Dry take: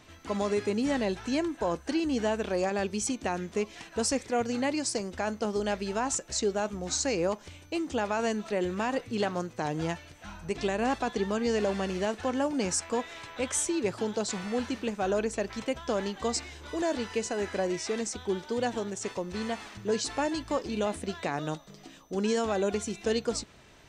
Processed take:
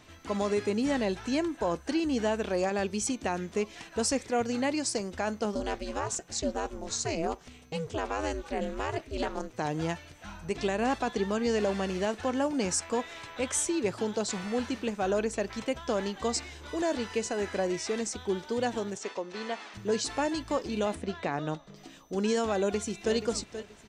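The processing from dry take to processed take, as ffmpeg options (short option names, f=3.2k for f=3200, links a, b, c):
-filter_complex "[0:a]asplit=3[a][b][c];[a]afade=t=out:st=5.54:d=0.02[d];[b]aeval=exprs='val(0)*sin(2*PI*160*n/s)':c=same,afade=t=in:st=5.54:d=0.02,afade=t=out:st=9.52:d=0.02[e];[c]afade=t=in:st=9.52:d=0.02[f];[d][e][f]amix=inputs=3:normalize=0,asettb=1/sr,asplit=3[g][h][i];[g]atrim=end=18.974[j];[h]atrim=start=18.97:end=19.74,asetpts=PTS-STARTPTS,afade=t=in:d=0.004:c=qsin,afade=t=out:st=0.766:d=0.004:c=qsin,highpass=320,lowpass=5.8k[k];[i]atrim=start=19.736[l];[j][k]acrossfade=d=0.004:c1=hsin:c2=qsin[m];[m][l]acrossfade=d=0.004:c1=qsin:c2=hsin,asettb=1/sr,asplit=3[n][o][p];[n]atrim=end=20.954[q];[o]atrim=start=20.95:end=21.76,asetpts=PTS-STARTPTS,afade=t=in:d=0.004:c=qsin,afade=t=out:st=0.806:d=0.004:c=qsin,aemphasis=mode=reproduction:type=50fm[r];[p]atrim=start=21.756[s];[q][r]acrossfade=d=0.004:c1=hsin:c2=qsin[t];[t][s]acrossfade=d=0.004:c1=qsin:c2=hsin,asplit=2[u][v];[v]afade=t=in:st=22.57:d=0.01,afade=t=out:st=23.14:d=0.01,aecho=0:1:480|960|1440:0.281838|0.0704596|0.0176149[w];[u][w]amix=inputs=2:normalize=0"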